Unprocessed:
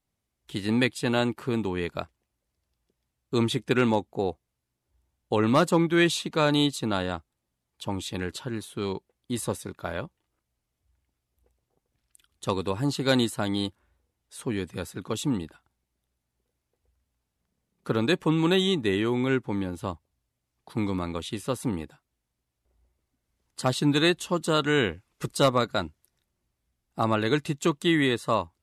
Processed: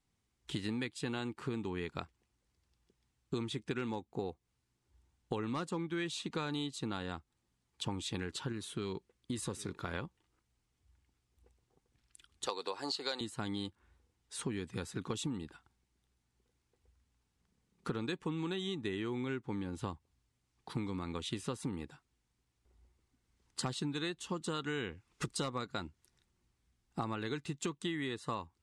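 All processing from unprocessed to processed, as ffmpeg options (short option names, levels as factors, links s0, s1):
-filter_complex "[0:a]asettb=1/sr,asplit=3[s0][s1][s2];[s0]atrim=end=8.524[s3];[s1]atrim=start=8.52:end=9.94,asetpts=PTS-STARTPTS,afade=t=in:d=0.004:c=qsin,afade=t=out:st=1.416:d=0.004:c=qsin,equalizer=f=800:t=o:w=0.35:g=-6,acompressor=threshold=0.0126:ratio=1.5:attack=3.2:release=140:knee=1:detection=peak,aecho=1:1:797:0.0708,atrim=end_sample=62622[s4];[s2]atrim=start=9.936[s5];[s3][s4]acrossfade=d=0.004:c1=hsin:c2=qsin[s6];[s6][s5]acrossfade=d=0.004:c1=qsin:c2=hsin,asettb=1/sr,asplit=3[s7][s8][s9];[s7]atrim=end=12.464[s10];[s8]atrim=start=12.46:end=13.21,asetpts=PTS-STARTPTS,afade=t=in:d=0.004:c=qsin,afade=t=out:st=0.746:d=0.004:c=qsin,highpass=f=570:t=q:w=1.6,equalizer=f=4500:w=4.4:g=13.5[s11];[s9]atrim=start=13.206[s12];[s10][s11]acrossfade=d=0.004:c1=hsin:c2=qsin[s13];[s13][s12]acrossfade=d=0.004:c1=qsin:c2=hsin,lowpass=f=9400:w=0.5412,lowpass=f=9400:w=1.3066,equalizer=f=610:t=o:w=0.28:g=-11.5,acompressor=threshold=0.0158:ratio=10,volume=1.19"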